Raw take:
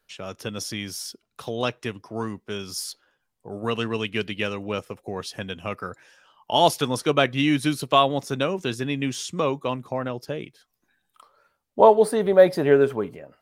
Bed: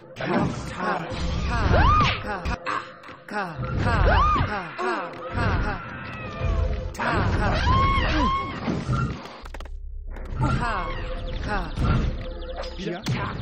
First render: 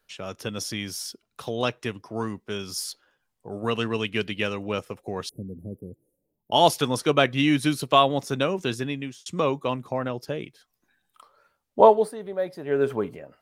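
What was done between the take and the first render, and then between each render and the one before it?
0:05.29–0:06.52: inverse Chebyshev band-stop filter 1,300–4,400 Hz, stop band 70 dB
0:08.76–0:09.26: fade out
0:11.85–0:12.95: duck −13.5 dB, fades 0.29 s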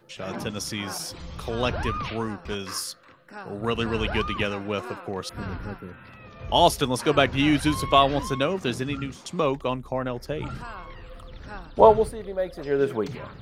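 mix in bed −12 dB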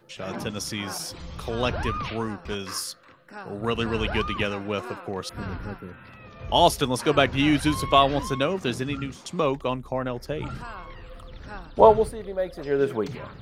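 no processing that can be heard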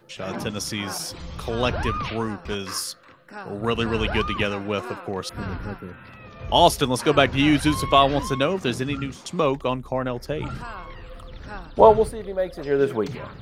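level +2.5 dB
brickwall limiter −2 dBFS, peak gain reduction 1.5 dB

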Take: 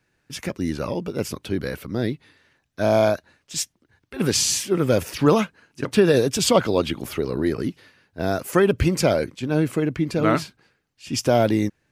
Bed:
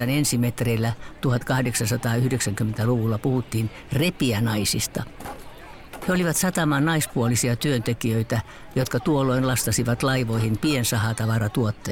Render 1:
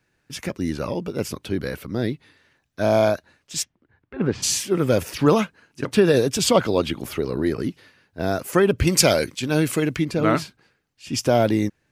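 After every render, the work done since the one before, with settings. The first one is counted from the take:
0:03.62–0:04.42: low-pass filter 2,800 Hz → 1,400 Hz
0:08.87–0:10.05: high-shelf EQ 2,100 Hz +12 dB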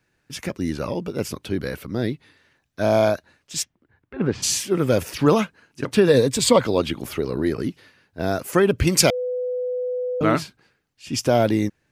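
0:06.07–0:06.64: EQ curve with evenly spaced ripples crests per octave 1, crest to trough 7 dB
0:09.10–0:10.21: beep over 499 Hz −22.5 dBFS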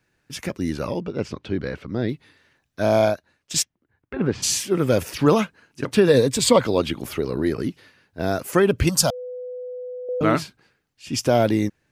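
0:01.00–0:02.09: high-frequency loss of the air 140 metres
0:02.99–0:04.20: transient designer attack +7 dB, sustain −7 dB
0:08.89–0:10.09: phaser with its sweep stopped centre 910 Hz, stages 4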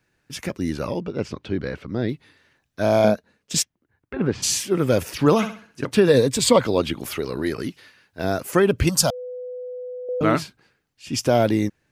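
0:03.04–0:03.59: hollow resonant body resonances 210/450 Hz, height 11 dB
0:05.36–0:05.83: flutter between parallel walls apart 11.3 metres, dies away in 0.43 s
0:07.02–0:08.24: tilt shelving filter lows −4 dB, about 790 Hz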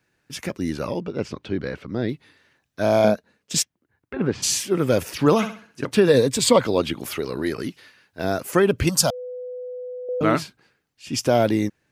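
low-shelf EQ 62 Hz −8.5 dB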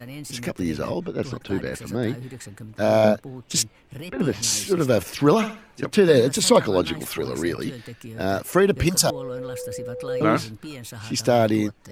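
mix in bed −15 dB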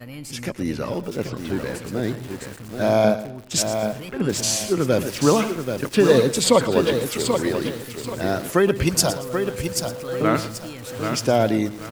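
repeating echo 115 ms, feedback 31%, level −14.5 dB
feedback echo at a low word length 783 ms, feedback 35%, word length 6 bits, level −6 dB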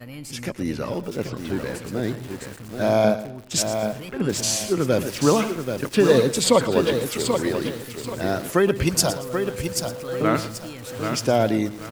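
level −1 dB

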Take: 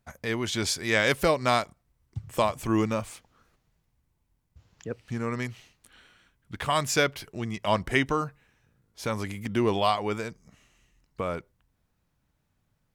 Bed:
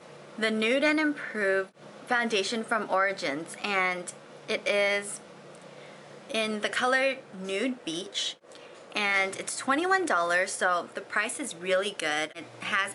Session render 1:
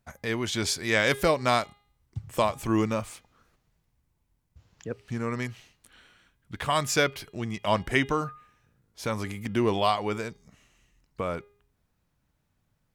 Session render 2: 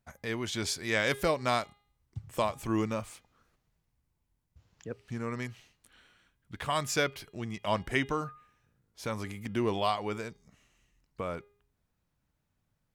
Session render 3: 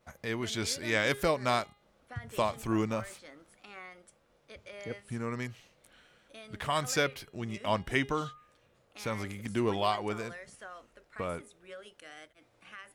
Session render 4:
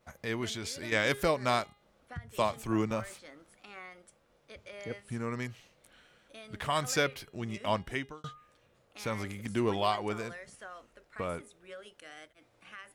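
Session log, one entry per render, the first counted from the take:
hum removal 408.9 Hz, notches 11
level −5 dB
mix in bed −21 dB
0:00.52–0:00.92: downward compressor, threshold −34 dBFS; 0:02.17–0:02.91: multiband upward and downward expander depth 40%; 0:07.69–0:08.24: fade out

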